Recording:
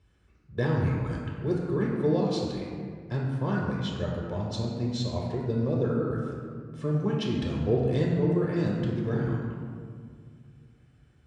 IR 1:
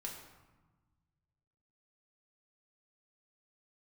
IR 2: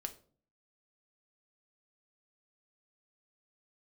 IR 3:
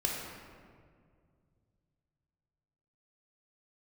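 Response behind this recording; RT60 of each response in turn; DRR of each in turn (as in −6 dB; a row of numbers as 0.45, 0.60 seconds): 3; 1.2, 0.45, 2.1 seconds; −1.5, 6.0, −3.0 decibels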